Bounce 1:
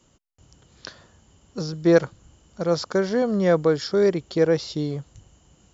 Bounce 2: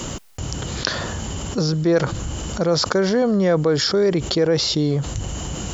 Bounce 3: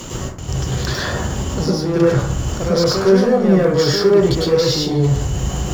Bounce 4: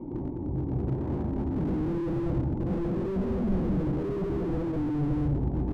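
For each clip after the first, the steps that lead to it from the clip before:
level flattener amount 70%; trim -2.5 dB
waveshaping leveller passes 3; plate-style reverb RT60 0.56 s, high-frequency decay 0.45×, pre-delay 90 ms, DRR -5.5 dB; trim -13.5 dB
cascade formant filter u; delay 208 ms -3.5 dB; slew-rate limiter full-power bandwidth 8.1 Hz; trim +3.5 dB

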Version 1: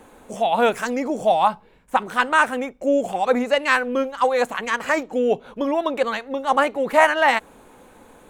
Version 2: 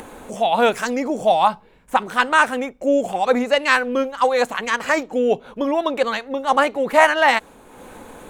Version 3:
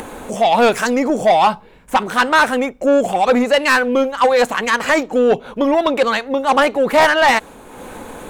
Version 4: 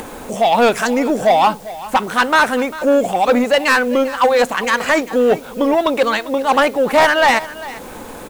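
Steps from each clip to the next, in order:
dynamic bell 4.7 kHz, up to +4 dB, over -38 dBFS, Q 1.1; upward compressor, threshold -32 dBFS; trim +1.5 dB
saturation -13.5 dBFS, distortion -11 dB; trim +7 dB
added noise white -45 dBFS; delay 397 ms -17 dB

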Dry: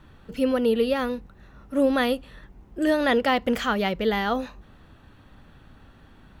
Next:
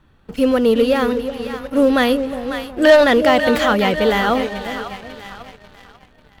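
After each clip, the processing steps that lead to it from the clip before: time-frequency box 2.84–3.04 s, 530–4700 Hz +11 dB; two-band feedback delay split 730 Hz, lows 366 ms, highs 544 ms, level -9.5 dB; waveshaping leveller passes 2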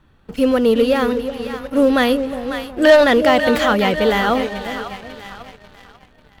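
no audible change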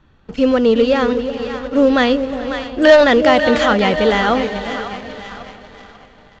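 multi-head delay 211 ms, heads second and third, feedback 45%, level -19 dB; resampled via 16 kHz; trim +1.5 dB

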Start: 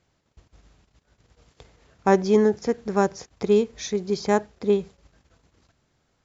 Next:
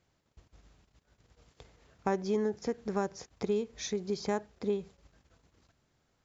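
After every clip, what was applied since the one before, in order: compression 2.5:1, threshold -25 dBFS, peak gain reduction 9 dB; trim -5 dB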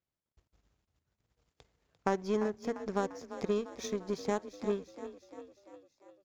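power-law waveshaper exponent 1.4; frequency-shifting echo 346 ms, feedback 58%, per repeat +31 Hz, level -12.5 dB; trim +2.5 dB

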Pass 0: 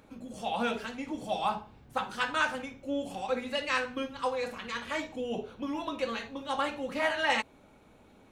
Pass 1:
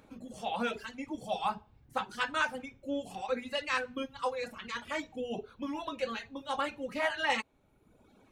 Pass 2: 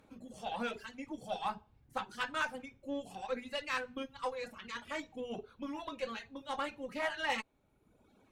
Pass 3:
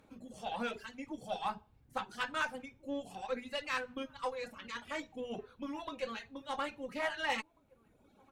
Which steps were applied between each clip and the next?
reverb removal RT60 1 s; trim -1.5 dB
Chebyshev shaper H 8 -29 dB, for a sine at -16.5 dBFS; trim -4.5 dB
echo from a far wall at 290 m, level -26 dB

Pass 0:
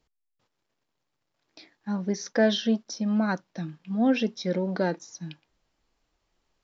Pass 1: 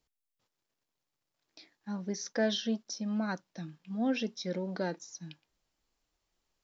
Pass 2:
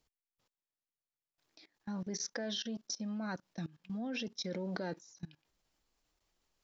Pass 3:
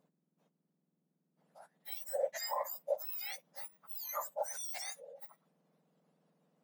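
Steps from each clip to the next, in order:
treble shelf 4.9 kHz +9.5 dB; trim -8 dB
level held to a coarse grid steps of 21 dB; trim +4 dB
spectrum inverted on a logarithmic axis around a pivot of 1.8 kHz; trim +2.5 dB

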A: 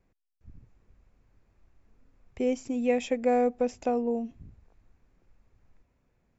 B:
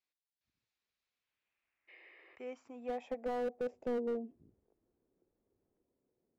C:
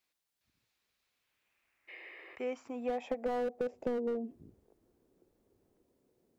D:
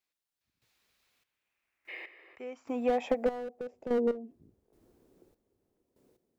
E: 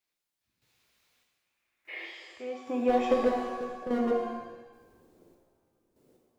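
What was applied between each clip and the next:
spectral replace 1.91–2.33 s, 320–5200 Hz after; band-pass sweep 4 kHz -> 380 Hz, 1.05–4.06 s; slew-rate limiter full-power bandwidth 13 Hz; trim -1.5 dB
compression 6:1, threshold -40 dBFS, peak gain reduction 8.5 dB; trim +9 dB
trance gate "...xxx...x" 73 bpm -12 dB; trim +7 dB
pitch-shifted reverb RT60 1 s, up +7 st, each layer -8 dB, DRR 0 dB

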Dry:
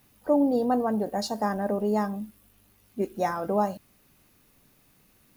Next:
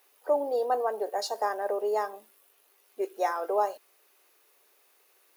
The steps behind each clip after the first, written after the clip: elliptic high-pass 390 Hz, stop band 80 dB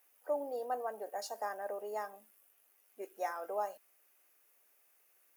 fifteen-band graphic EQ 160 Hz +8 dB, 400 Hz -9 dB, 1 kHz -5 dB, 4 kHz -9 dB, 16 kHz +4 dB; trim -6 dB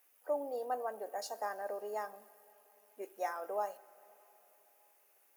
plate-style reverb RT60 4.2 s, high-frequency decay 0.9×, DRR 19.5 dB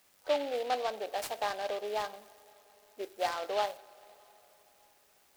delay time shaken by noise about 2.6 kHz, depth 0.057 ms; trim +5 dB

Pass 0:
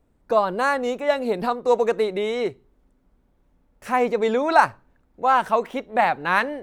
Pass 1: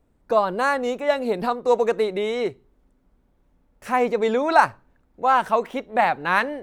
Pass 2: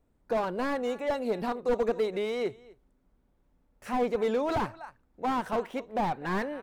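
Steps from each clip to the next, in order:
no audible change
delay 250 ms -23 dB; slew-rate limiter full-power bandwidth 80 Hz; trim -6 dB

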